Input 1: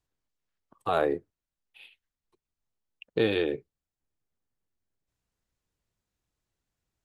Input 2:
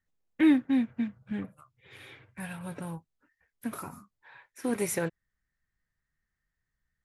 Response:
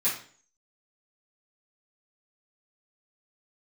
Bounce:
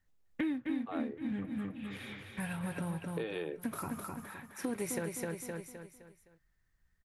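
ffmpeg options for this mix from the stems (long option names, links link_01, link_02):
-filter_complex "[0:a]bass=frequency=250:gain=-12,treble=frequency=4000:gain=-12,volume=-5dB[link_01];[1:a]lowshelf=frequency=92:gain=7,volume=2.5dB,asplit=2[link_02][link_03];[link_03]volume=-5.5dB,aecho=0:1:258|516|774|1032|1290:1|0.39|0.152|0.0593|0.0231[link_04];[link_01][link_02][link_04]amix=inputs=3:normalize=0,acompressor=threshold=-34dB:ratio=5"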